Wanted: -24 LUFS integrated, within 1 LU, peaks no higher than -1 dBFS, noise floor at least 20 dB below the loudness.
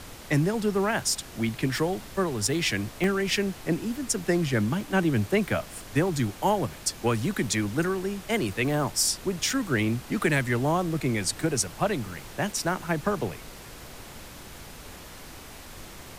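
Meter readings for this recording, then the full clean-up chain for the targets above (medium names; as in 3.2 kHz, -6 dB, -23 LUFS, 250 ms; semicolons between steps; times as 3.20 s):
dropouts 4; longest dropout 1.5 ms; noise floor -44 dBFS; noise floor target -47 dBFS; loudness -27.0 LUFS; peak level -11.5 dBFS; loudness target -24.0 LUFS
-> interpolate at 3.04/4.81/9.50/12.09 s, 1.5 ms; noise print and reduce 6 dB; trim +3 dB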